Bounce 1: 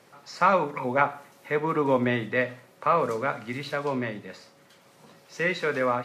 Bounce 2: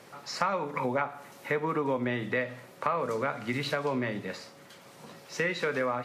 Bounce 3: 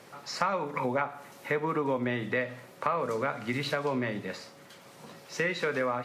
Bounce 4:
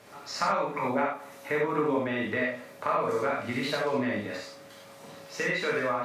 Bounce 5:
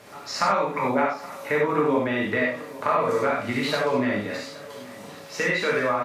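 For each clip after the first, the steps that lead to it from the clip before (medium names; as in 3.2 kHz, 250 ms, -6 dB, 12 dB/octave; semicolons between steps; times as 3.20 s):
compression 6:1, threshold -31 dBFS, peak gain reduction 14.5 dB; trim +4.5 dB
crackle 18 per s -52 dBFS
gated-style reverb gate 120 ms flat, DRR -3.5 dB; trim -3 dB
delay 823 ms -19 dB; trim +5 dB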